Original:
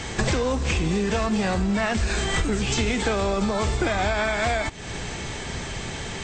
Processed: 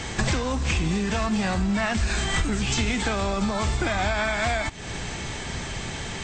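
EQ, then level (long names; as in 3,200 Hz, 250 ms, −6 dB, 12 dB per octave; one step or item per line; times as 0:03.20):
dynamic equaliser 450 Hz, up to −7 dB, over −41 dBFS, Q 1.9
0.0 dB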